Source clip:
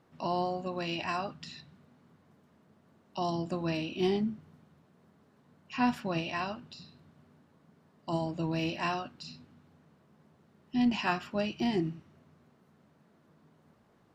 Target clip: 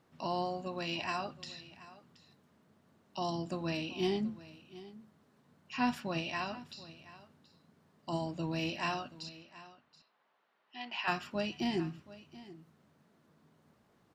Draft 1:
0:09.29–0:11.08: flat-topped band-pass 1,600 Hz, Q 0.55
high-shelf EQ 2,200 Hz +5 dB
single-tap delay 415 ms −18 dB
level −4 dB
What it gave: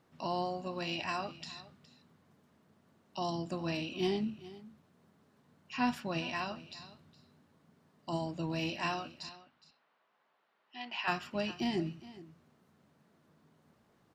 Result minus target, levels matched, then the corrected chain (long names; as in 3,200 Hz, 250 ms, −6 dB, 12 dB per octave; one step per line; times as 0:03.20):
echo 312 ms early
0:09.29–0:11.08: flat-topped band-pass 1,600 Hz, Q 0.55
high-shelf EQ 2,200 Hz +5 dB
single-tap delay 727 ms −18 dB
level −4 dB